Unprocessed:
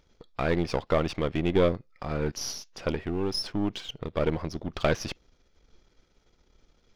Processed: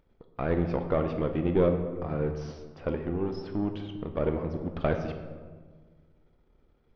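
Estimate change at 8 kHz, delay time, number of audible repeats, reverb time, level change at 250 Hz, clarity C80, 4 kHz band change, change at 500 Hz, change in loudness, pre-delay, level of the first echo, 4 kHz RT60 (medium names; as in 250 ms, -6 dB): under -20 dB, no echo, no echo, 1.5 s, 0.0 dB, 9.5 dB, -15.5 dB, -0.5 dB, -1.0 dB, 14 ms, no echo, 0.85 s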